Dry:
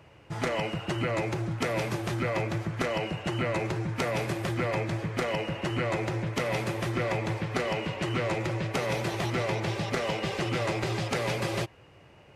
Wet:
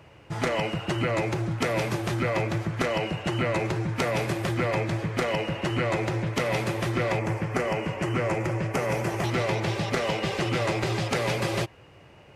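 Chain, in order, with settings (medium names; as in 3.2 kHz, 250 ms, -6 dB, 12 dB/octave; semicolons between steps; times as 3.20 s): 7.19–9.24 s: peaking EQ 3.8 kHz -14 dB 0.56 oct; trim +3 dB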